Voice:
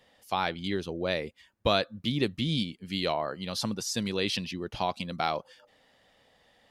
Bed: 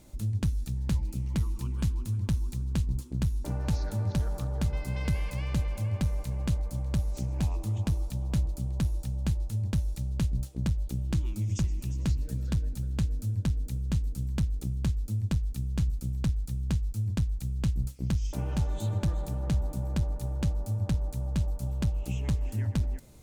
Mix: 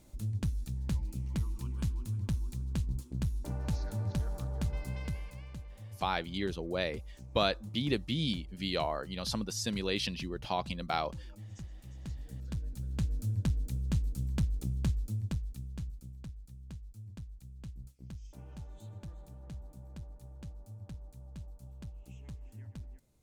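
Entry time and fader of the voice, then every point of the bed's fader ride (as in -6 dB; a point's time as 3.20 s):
5.70 s, -3.5 dB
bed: 4.87 s -5 dB
5.61 s -17 dB
11.77 s -17 dB
13.19 s -2.5 dB
14.94 s -2.5 dB
16.30 s -17.5 dB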